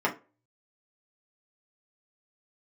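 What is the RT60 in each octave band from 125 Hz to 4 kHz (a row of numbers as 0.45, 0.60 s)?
0.55, 0.35, 0.35, 0.30, 0.25, 0.20 s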